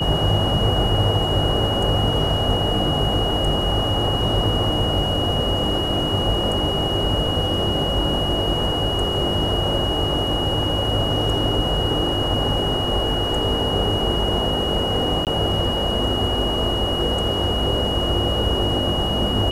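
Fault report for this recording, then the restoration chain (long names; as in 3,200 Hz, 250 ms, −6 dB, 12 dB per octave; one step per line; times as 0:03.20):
whistle 2,900 Hz −24 dBFS
0:15.25–0:15.27: drop-out 18 ms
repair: notch filter 2,900 Hz, Q 30
repair the gap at 0:15.25, 18 ms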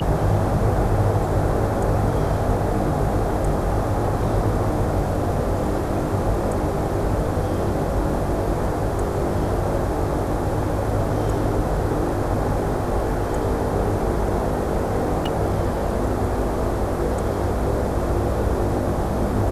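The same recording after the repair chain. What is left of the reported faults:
none of them is left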